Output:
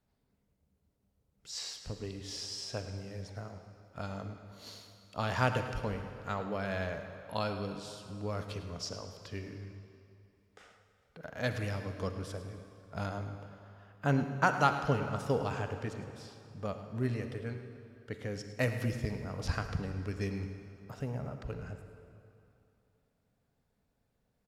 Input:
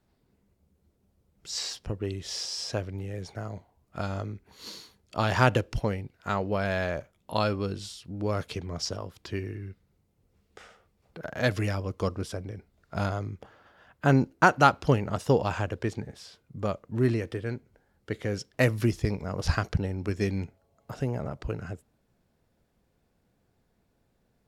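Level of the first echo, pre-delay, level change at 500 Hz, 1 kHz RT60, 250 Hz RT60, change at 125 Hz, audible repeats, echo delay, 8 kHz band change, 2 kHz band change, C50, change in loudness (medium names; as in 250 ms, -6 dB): -14.0 dB, 38 ms, -7.5 dB, 2.8 s, 2.5 s, -6.5 dB, 1, 107 ms, -7.0 dB, -6.5 dB, 7.0 dB, -7.0 dB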